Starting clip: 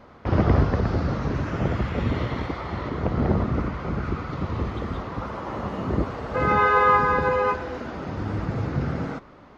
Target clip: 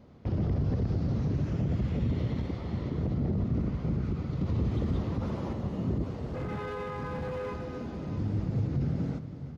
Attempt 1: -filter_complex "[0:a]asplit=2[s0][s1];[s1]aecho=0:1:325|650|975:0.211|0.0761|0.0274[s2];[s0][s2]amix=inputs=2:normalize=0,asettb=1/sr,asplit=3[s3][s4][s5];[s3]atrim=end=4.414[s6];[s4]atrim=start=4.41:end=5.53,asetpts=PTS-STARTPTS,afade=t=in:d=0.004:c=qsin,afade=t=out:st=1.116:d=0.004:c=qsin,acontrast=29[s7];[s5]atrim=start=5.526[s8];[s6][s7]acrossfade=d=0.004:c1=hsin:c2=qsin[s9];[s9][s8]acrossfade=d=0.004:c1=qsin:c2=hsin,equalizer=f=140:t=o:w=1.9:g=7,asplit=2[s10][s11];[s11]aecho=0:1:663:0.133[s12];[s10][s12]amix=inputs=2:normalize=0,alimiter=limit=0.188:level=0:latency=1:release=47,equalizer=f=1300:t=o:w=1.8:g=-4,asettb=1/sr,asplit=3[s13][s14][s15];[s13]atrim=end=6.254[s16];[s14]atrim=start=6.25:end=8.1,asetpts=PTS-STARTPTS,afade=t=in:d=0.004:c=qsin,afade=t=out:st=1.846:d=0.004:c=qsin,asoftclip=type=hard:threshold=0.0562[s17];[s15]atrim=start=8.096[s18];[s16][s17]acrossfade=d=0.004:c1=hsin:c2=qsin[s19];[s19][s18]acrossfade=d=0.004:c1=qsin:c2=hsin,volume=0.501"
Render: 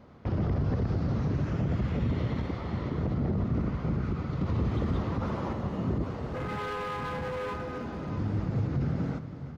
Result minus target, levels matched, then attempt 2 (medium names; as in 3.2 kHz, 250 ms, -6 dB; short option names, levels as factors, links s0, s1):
1 kHz band +5.0 dB
-filter_complex "[0:a]asplit=2[s0][s1];[s1]aecho=0:1:325|650|975:0.211|0.0761|0.0274[s2];[s0][s2]amix=inputs=2:normalize=0,asettb=1/sr,asplit=3[s3][s4][s5];[s3]atrim=end=4.414[s6];[s4]atrim=start=4.41:end=5.53,asetpts=PTS-STARTPTS,afade=t=in:d=0.004:c=qsin,afade=t=out:st=1.116:d=0.004:c=qsin,acontrast=29[s7];[s5]atrim=start=5.526[s8];[s6][s7]acrossfade=d=0.004:c1=hsin:c2=qsin[s9];[s9][s8]acrossfade=d=0.004:c1=qsin:c2=hsin,equalizer=f=140:t=o:w=1.9:g=7,asplit=2[s10][s11];[s11]aecho=0:1:663:0.133[s12];[s10][s12]amix=inputs=2:normalize=0,alimiter=limit=0.188:level=0:latency=1:release=47,equalizer=f=1300:t=o:w=1.8:g=-12,asettb=1/sr,asplit=3[s13][s14][s15];[s13]atrim=end=6.254[s16];[s14]atrim=start=6.25:end=8.1,asetpts=PTS-STARTPTS,afade=t=in:d=0.004:c=qsin,afade=t=out:st=1.846:d=0.004:c=qsin,asoftclip=type=hard:threshold=0.0562[s17];[s15]atrim=start=8.096[s18];[s16][s17]acrossfade=d=0.004:c1=hsin:c2=qsin[s19];[s19][s18]acrossfade=d=0.004:c1=qsin:c2=hsin,volume=0.501"